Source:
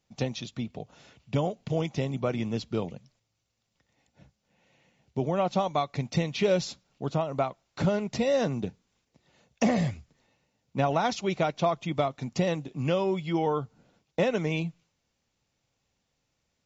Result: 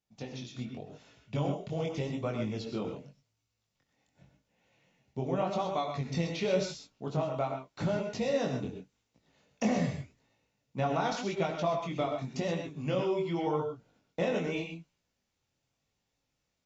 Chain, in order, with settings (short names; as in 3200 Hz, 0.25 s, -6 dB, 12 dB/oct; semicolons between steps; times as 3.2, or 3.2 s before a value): non-linear reverb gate 0.15 s rising, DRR 4.5 dB; chorus 0.87 Hz, delay 17.5 ms, depth 6.4 ms; AGC gain up to 6 dB; gain -8.5 dB